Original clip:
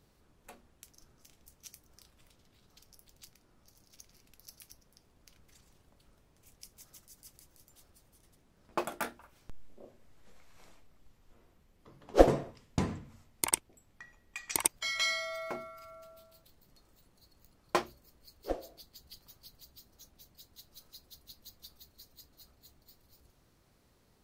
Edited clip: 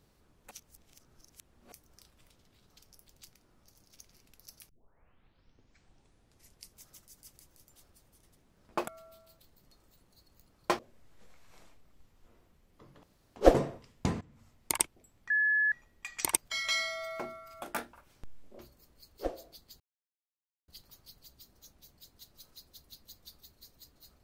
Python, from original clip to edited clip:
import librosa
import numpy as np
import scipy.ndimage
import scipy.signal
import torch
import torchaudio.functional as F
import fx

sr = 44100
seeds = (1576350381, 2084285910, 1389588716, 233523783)

y = fx.edit(x, sr, fx.reverse_span(start_s=0.51, length_s=1.21),
    fx.tape_start(start_s=4.69, length_s=2.08),
    fx.swap(start_s=8.88, length_s=0.97, other_s=15.93, other_length_s=1.91),
    fx.insert_room_tone(at_s=12.09, length_s=0.33),
    fx.fade_in_from(start_s=12.94, length_s=0.5, curve='qsin', floor_db=-19.5),
    fx.insert_tone(at_s=14.03, length_s=0.42, hz=1710.0, db=-24.0),
    fx.insert_silence(at_s=19.05, length_s=0.88), tone=tone)